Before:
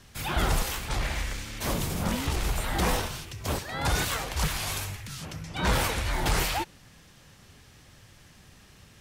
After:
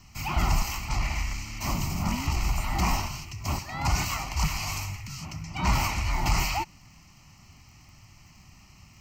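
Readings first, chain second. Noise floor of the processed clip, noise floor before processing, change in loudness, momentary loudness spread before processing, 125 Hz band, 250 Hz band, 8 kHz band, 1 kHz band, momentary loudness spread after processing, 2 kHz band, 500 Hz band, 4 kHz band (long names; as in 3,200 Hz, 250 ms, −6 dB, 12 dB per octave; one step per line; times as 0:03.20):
−54 dBFS, −55 dBFS, 0.0 dB, 9 LU, +2.0 dB, −0.5 dB, −1.0 dB, +1.0 dB, 9 LU, −1.5 dB, −7.5 dB, −2.0 dB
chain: surface crackle 37 per second −44 dBFS
phaser with its sweep stopped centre 2,400 Hz, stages 8
level +2.5 dB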